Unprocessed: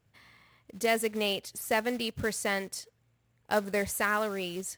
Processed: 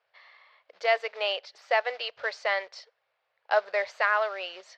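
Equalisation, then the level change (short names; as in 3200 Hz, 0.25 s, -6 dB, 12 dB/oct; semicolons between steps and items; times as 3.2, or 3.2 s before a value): elliptic band-pass 570–4800 Hz, stop band 40 dB; high shelf 3500 Hz -7 dB; +5.5 dB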